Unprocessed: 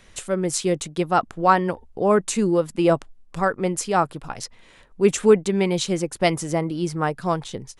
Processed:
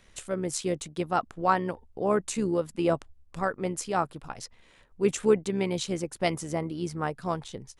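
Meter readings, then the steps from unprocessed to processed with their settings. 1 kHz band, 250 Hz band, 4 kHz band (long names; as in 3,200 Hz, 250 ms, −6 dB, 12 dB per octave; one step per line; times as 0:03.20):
−7.5 dB, −7.5 dB, −7.5 dB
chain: amplitude modulation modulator 71 Hz, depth 25%
level −5.5 dB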